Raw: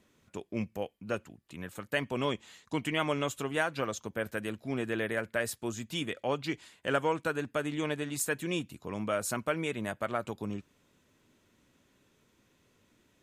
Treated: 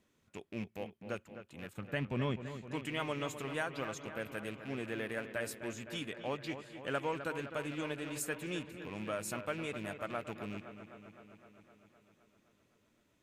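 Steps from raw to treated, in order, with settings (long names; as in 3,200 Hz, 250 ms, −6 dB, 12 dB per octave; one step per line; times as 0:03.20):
loose part that buzzes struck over −40 dBFS, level −32 dBFS
0:01.73–0:02.46: bass and treble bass +11 dB, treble −8 dB
delay with a low-pass on its return 257 ms, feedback 68%, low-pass 3,100 Hz, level −10.5 dB
level −7 dB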